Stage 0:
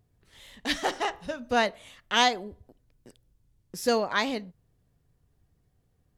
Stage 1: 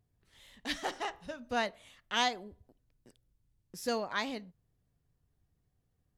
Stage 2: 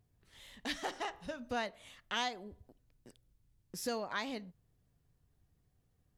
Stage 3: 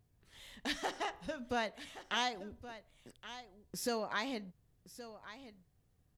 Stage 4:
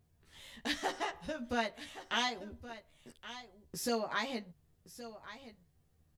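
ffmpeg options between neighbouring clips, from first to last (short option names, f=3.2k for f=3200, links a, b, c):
-af "equalizer=f=460:t=o:w=0.77:g=-2,volume=-7.5dB"
-af "acompressor=threshold=-41dB:ratio=2,volume=2.5dB"
-af "aecho=1:1:1121:0.2,volume=1dB"
-filter_complex "[0:a]asplit=2[a][b];[b]adelay=13,volume=-3dB[c];[a][c]amix=inputs=2:normalize=0"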